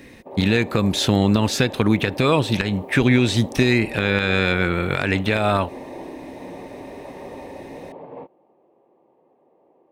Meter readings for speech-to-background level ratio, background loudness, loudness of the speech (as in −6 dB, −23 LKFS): 17.5 dB, −37.5 LKFS, −20.0 LKFS